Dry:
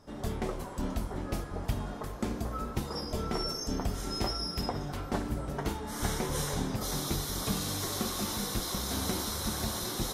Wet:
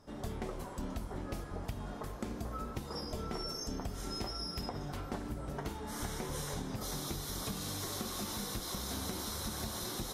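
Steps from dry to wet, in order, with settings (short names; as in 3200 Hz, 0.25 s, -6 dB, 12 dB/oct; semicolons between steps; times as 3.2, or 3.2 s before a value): compressor, threshold -32 dBFS, peak gain reduction 7.5 dB; gain -3 dB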